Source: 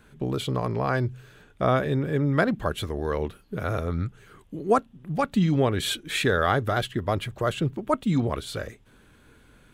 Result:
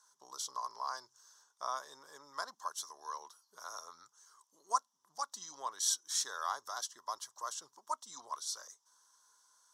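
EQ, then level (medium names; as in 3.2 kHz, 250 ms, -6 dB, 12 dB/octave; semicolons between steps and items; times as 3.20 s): two resonant band-passes 2.4 kHz, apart 2.5 oct; differentiator; +14.5 dB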